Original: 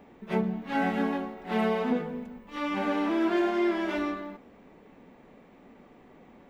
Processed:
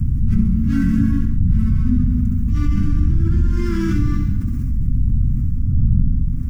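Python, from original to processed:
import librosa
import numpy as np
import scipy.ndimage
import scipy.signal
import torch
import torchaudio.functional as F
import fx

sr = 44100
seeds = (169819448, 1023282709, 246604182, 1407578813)

p1 = fx.dmg_wind(x, sr, seeds[0], corner_hz=96.0, level_db=-26.0)
p2 = scipy.signal.sosfilt(scipy.signal.ellip(3, 1.0, 60, [250.0, 1500.0], 'bandstop', fs=sr, output='sos'), p1)
p3 = fx.echo_feedback(p2, sr, ms=67, feedback_pct=50, wet_db=-6.5)
p4 = fx.quant_dither(p3, sr, seeds[1], bits=12, dither='none')
p5 = fx.low_shelf(p4, sr, hz=370.0, db=8.5)
p6 = p5 + fx.echo_single(p5, sr, ms=304, db=-24.0, dry=0)
p7 = fx.rider(p6, sr, range_db=5, speed_s=0.5)
p8 = fx.band_shelf(p7, sr, hz=2500.0, db=-15.0, octaves=1.7)
p9 = fx.env_flatten(p8, sr, amount_pct=70)
y = p9 * librosa.db_to_amplitude(-4.0)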